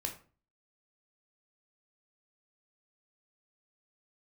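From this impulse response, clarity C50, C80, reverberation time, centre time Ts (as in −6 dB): 10.0 dB, 15.0 dB, 0.40 s, 17 ms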